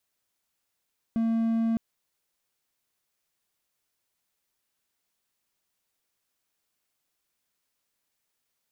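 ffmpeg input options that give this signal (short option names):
-f lavfi -i "aevalsrc='0.0944*(1-4*abs(mod(227*t+0.25,1)-0.5))':d=0.61:s=44100"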